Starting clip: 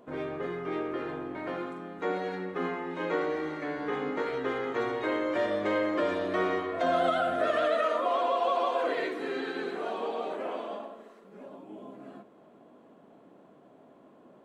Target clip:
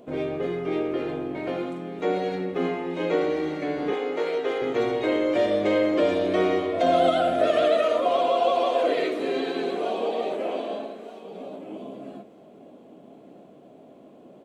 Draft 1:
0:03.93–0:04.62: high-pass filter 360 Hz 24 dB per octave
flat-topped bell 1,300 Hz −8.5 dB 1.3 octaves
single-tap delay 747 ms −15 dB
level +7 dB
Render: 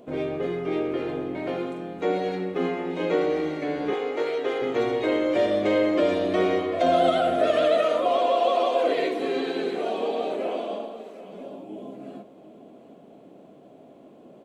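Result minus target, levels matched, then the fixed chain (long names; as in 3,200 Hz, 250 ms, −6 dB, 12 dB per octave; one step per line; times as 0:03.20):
echo 474 ms early
0:03.93–0:04.62: high-pass filter 360 Hz 24 dB per octave
flat-topped bell 1,300 Hz −8.5 dB 1.3 octaves
single-tap delay 1,221 ms −15 dB
level +7 dB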